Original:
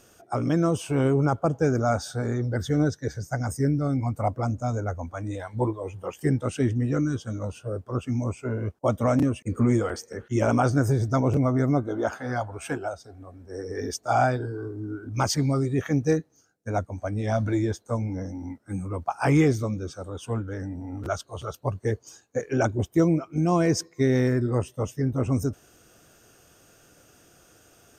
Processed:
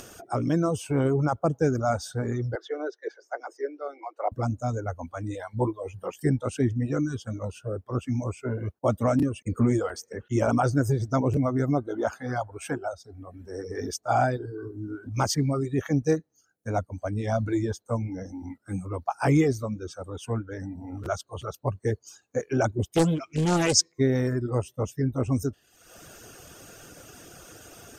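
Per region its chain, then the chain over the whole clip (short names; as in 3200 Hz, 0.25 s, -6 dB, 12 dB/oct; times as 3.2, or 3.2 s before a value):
2.55–4.32 steep high-pass 340 Hz 72 dB/oct + air absorption 240 m
22.92–23.92 band shelf 4000 Hz +12 dB 2.4 oct + Doppler distortion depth 0.8 ms
whole clip: reverb removal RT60 0.75 s; dynamic EQ 2600 Hz, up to -3 dB, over -41 dBFS, Q 0.85; upward compressor, threshold -36 dBFS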